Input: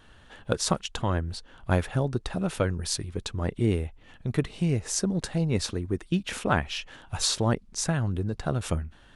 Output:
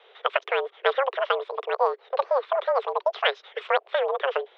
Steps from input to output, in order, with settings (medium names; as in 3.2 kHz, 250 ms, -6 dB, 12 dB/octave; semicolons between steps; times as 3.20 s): speed mistake 7.5 ips tape played at 15 ips; mistuned SSB +270 Hz 150–3300 Hz; trim +3 dB